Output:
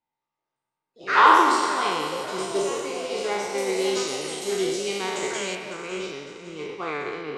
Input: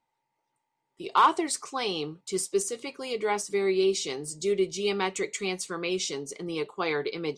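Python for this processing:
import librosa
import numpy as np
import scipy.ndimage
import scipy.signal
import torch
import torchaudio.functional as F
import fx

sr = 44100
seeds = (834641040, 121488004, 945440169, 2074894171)

y = fx.spec_trails(x, sr, decay_s=2.42)
y = fx.echo_pitch(y, sr, ms=212, semitones=5, count=3, db_per_echo=-6.0)
y = fx.lowpass(y, sr, hz=fx.steps((0.0, 5600.0), (3.58, 9500.0), (5.55, 2700.0)), slope=12)
y = fx.echo_feedback(y, sr, ms=554, feedback_pct=38, wet_db=-11.0)
y = fx.upward_expand(y, sr, threshold_db=-35.0, expansion=1.5)
y = F.gain(torch.from_numpy(y), 1.0).numpy()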